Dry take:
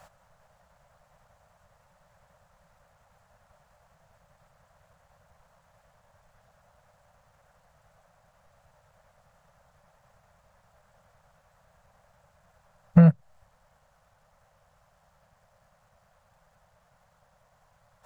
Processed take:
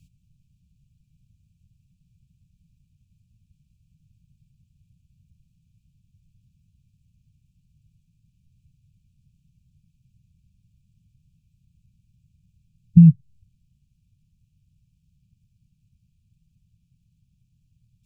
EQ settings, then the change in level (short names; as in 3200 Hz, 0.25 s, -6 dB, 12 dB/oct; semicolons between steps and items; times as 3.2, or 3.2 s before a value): brick-wall FIR band-stop 320–2300 Hz; bell 120 Hz +6.5 dB 1.8 oct; low shelf 440 Hz +11 dB; -9.5 dB